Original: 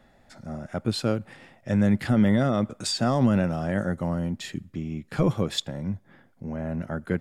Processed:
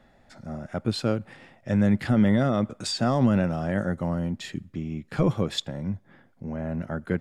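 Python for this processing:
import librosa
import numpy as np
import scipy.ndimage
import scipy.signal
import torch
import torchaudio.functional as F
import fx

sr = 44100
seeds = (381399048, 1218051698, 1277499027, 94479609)

y = fx.high_shelf(x, sr, hz=8800.0, db=-7.5)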